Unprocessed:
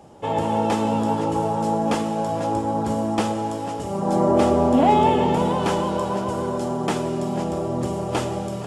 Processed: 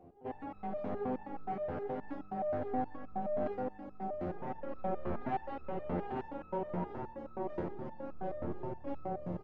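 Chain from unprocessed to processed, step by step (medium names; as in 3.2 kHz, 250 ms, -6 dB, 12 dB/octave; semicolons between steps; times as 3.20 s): treble shelf 2 kHz -11 dB; hum notches 50/100/150/200 Hz; in parallel at -0.5 dB: peak limiter -17 dBFS, peak gain reduction 10.5 dB; on the sum: overload inside the chain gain 19 dB; delay 679 ms -6 dB; on a send at -16.5 dB: reverberation RT60 1.0 s, pre-delay 3 ms; on the sum: speed mistake 48 kHz file played as 44.1 kHz; tape spacing loss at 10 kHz 39 dB; resonator arpeggio 9.5 Hz 87–1300 Hz; trim -2.5 dB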